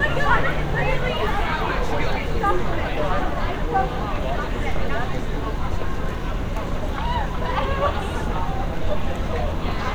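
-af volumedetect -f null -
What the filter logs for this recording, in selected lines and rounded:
mean_volume: -20.9 dB
max_volume: -5.2 dB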